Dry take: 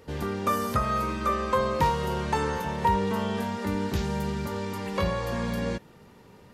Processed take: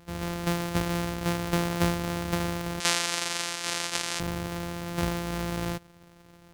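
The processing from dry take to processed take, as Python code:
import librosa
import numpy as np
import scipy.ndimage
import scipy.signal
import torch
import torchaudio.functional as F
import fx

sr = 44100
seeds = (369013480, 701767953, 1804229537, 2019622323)

y = np.r_[np.sort(x[:len(x) // 256 * 256].reshape(-1, 256), axis=1).ravel(), x[len(x) // 256 * 256:]]
y = fx.weighting(y, sr, curve='ITU-R 468', at=(2.8, 4.2))
y = y * 10.0 ** (-2.0 / 20.0)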